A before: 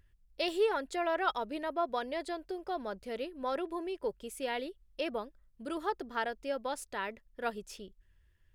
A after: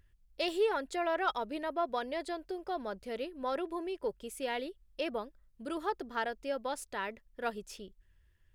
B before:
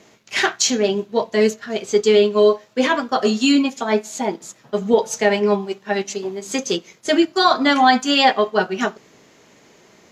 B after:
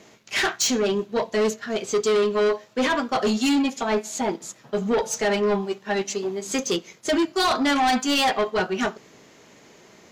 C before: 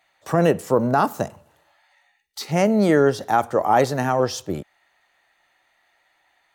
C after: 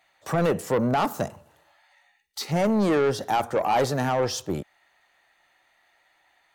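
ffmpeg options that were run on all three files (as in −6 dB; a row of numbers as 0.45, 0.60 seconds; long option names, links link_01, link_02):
-af "asoftclip=type=tanh:threshold=-17dB"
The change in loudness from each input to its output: −0.5, −5.0, −4.5 LU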